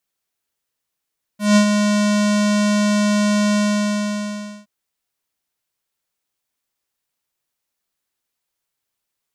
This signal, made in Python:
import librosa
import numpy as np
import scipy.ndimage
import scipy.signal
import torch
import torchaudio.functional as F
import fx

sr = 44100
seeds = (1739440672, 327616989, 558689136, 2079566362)

y = fx.sub_voice(sr, note=56, wave='square', cutoff_hz=7300.0, q=1.9, env_oct=1.0, env_s=0.09, attack_ms=170.0, decay_s=0.09, sustain_db=-6.0, release_s=1.11, note_s=2.16, slope=12)